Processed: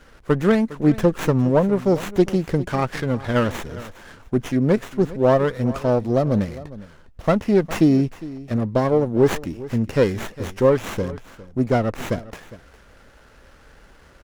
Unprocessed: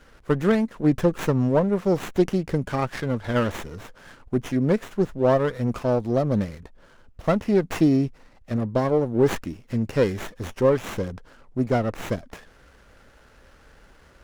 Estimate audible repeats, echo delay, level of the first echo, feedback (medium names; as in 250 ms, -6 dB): 1, 407 ms, -17.5 dB, no regular repeats